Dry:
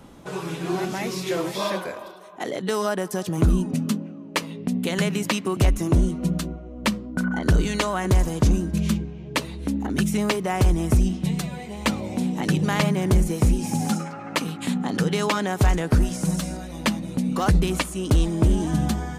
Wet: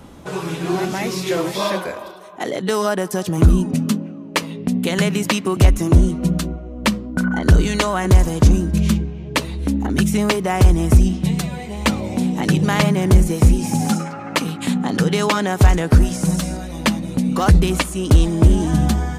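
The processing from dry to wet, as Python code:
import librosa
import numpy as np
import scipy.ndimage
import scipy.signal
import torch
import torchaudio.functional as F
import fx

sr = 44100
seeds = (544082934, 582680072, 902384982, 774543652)

y = fx.peak_eq(x, sr, hz=77.0, db=7.0, octaves=0.44)
y = y * 10.0 ** (5.0 / 20.0)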